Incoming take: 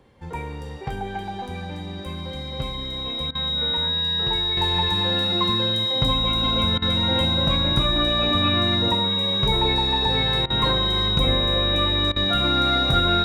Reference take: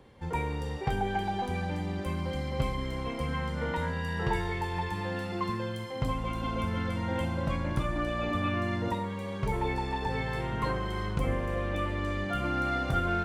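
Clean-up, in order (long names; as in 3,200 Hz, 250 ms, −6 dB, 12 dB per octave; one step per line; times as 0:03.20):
notch filter 3,800 Hz, Q 30
repair the gap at 0:03.31/0:06.78/0:10.46/0:12.12, 40 ms
level 0 dB, from 0:04.57 −7.5 dB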